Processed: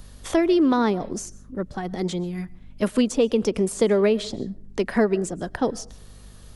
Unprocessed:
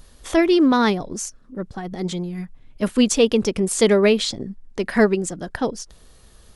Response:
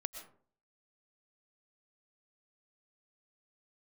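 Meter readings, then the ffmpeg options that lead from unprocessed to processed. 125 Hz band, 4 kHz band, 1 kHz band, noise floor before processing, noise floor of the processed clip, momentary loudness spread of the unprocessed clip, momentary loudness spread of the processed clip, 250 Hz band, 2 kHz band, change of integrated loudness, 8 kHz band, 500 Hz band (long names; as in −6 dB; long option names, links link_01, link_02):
−2.5 dB, −8.0 dB, −3.0 dB, −50 dBFS, −45 dBFS, 17 LU, 14 LU, −3.0 dB, −6.5 dB, −3.5 dB, −7.5 dB, −2.5 dB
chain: -filter_complex "[0:a]asplit=2[link_01][link_02];[1:a]atrim=start_sample=2205[link_03];[link_02][link_03]afir=irnorm=-1:irlink=0,volume=-13dB[link_04];[link_01][link_04]amix=inputs=2:normalize=0,aeval=exprs='val(0)+0.00501*(sin(2*PI*50*n/s)+sin(2*PI*2*50*n/s)/2+sin(2*PI*3*50*n/s)/3+sin(2*PI*4*50*n/s)/4+sin(2*PI*5*50*n/s)/5)':channel_layout=same,acrossover=split=190|1100[link_05][link_06][link_07];[link_05]acompressor=threshold=-36dB:ratio=4[link_08];[link_06]acompressor=threshold=-17dB:ratio=4[link_09];[link_07]acompressor=threshold=-34dB:ratio=4[link_10];[link_08][link_09][link_10]amix=inputs=3:normalize=0"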